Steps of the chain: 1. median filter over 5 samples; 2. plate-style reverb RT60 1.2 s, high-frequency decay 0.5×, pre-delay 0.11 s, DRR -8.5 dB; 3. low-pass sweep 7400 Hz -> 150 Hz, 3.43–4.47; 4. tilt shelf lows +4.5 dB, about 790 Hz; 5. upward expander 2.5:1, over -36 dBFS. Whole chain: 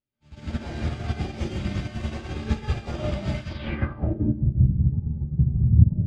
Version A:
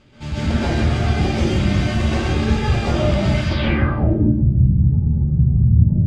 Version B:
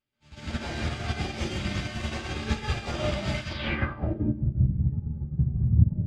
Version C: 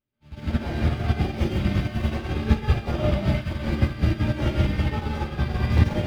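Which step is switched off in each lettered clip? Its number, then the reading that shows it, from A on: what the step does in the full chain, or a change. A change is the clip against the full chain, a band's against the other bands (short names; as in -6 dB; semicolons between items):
5, 125 Hz band -5.5 dB; 4, 125 Hz band -6.5 dB; 3, 125 Hz band -6.5 dB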